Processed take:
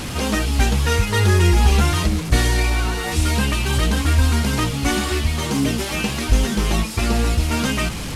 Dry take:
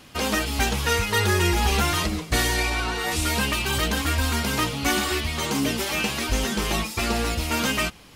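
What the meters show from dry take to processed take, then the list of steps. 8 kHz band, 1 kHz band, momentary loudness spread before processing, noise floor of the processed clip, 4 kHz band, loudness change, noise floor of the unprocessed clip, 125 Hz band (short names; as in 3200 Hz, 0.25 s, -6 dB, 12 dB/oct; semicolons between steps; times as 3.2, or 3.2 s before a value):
+1.5 dB, +1.0 dB, 4 LU, -27 dBFS, +0.5 dB, +4.0 dB, -40 dBFS, +9.5 dB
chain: delta modulation 64 kbps, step -25.5 dBFS; low shelf 250 Hz +10.5 dB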